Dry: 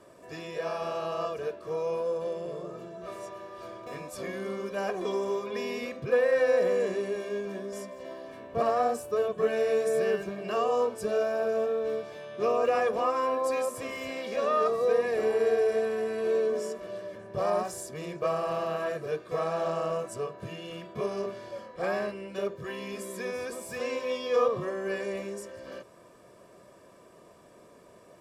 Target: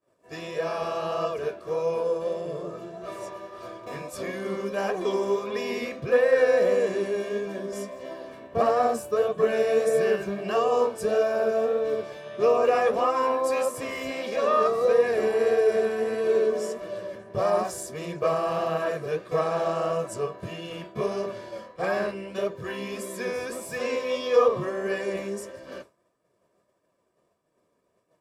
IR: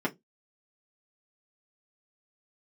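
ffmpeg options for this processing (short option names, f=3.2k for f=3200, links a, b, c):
-af "flanger=delay=6.2:depth=8.8:regen=55:speed=1.6:shape=sinusoidal,agate=range=-33dB:threshold=-45dB:ratio=3:detection=peak,volume=8dB"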